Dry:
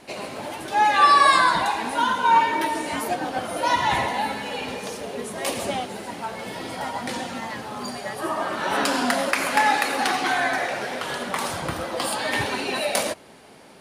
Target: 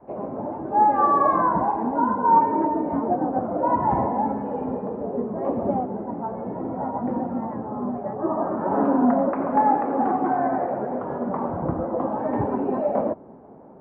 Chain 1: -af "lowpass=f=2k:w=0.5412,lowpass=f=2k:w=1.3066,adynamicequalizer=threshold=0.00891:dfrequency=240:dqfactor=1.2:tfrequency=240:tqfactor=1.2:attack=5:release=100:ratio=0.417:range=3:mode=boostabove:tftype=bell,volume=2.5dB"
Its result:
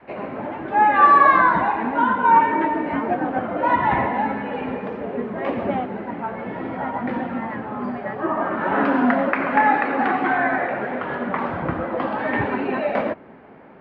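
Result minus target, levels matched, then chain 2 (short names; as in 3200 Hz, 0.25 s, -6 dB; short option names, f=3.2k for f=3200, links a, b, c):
2000 Hz band +15.0 dB
-af "lowpass=f=960:w=0.5412,lowpass=f=960:w=1.3066,adynamicequalizer=threshold=0.00891:dfrequency=240:dqfactor=1.2:tfrequency=240:tqfactor=1.2:attack=5:release=100:ratio=0.417:range=3:mode=boostabove:tftype=bell,volume=2.5dB"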